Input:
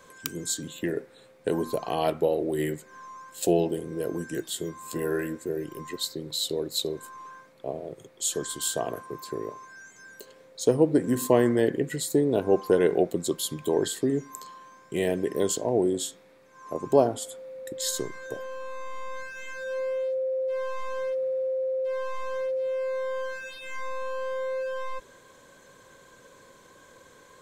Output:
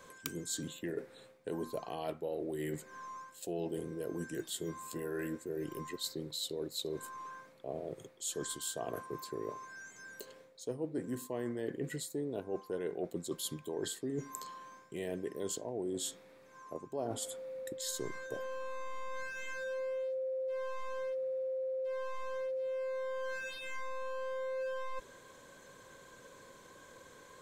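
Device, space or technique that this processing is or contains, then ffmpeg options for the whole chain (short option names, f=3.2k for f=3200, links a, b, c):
compression on the reversed sound: -af "areverse,acompressor=threshold=-33dB:ratio=6,areverse,volume=-2.5dB"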